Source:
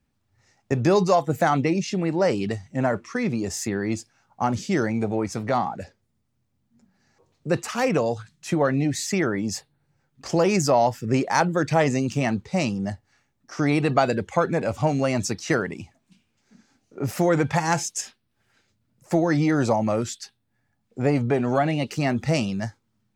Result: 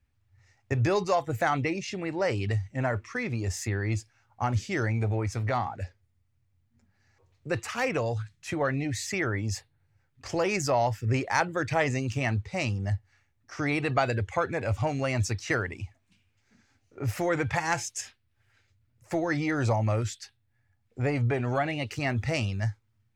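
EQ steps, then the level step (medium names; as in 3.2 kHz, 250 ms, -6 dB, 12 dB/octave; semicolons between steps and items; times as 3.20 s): resonant low shelf 130 Hz +8 dB, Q 3; peaking EQ 2.1 kHz +6.5 dB 1.2 oct; -6.5 dB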